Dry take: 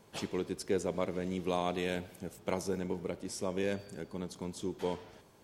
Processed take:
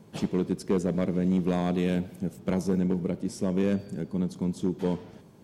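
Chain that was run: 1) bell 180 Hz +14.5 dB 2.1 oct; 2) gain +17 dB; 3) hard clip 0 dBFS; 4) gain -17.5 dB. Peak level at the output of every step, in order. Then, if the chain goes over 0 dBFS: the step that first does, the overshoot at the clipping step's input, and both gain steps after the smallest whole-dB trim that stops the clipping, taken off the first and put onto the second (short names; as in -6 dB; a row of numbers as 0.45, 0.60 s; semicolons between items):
-12.0, +5.0, 0.0, -17.5 dBFS; step 2, 5.0 dB; step 2 +12 dB, step 4 -12.5 dB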